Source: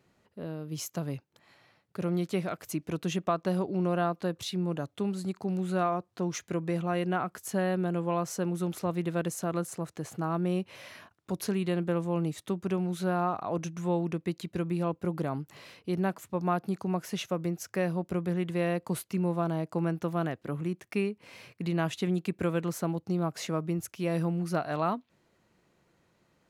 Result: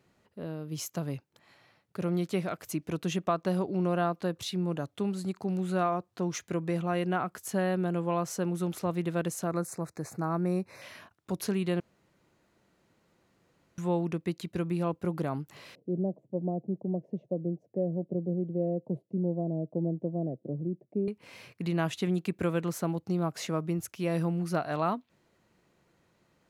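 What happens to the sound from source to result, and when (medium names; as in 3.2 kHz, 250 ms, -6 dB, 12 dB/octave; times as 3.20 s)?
9.47–10.82 s: Butterworth band-stop 3.1 kHz, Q 2
11.80–13.78 s: room tone
15.75–21.08 s: elliptic band-pass 130–610 Hz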